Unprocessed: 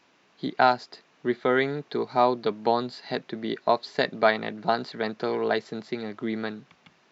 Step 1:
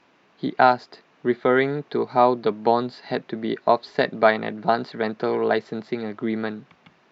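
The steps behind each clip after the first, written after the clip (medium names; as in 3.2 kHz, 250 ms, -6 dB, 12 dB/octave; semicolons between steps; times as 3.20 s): low-pass 2.4 kHz 6 dB/octave; trim +4.5 dB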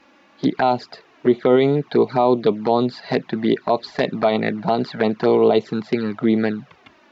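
peak limiter -12.5 dBFS, peak gain reduction 9.5 dB; touch-sensitive flanger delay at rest 3.7 ms, full sweep at -20.5 dBFS; trim +9 dB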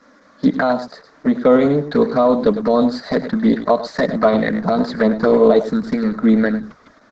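static phaser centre 550 Hz, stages 8; delay 102 ms -11.5 dB; trim +6.5 dB; Opus 10 kbps 48 kHz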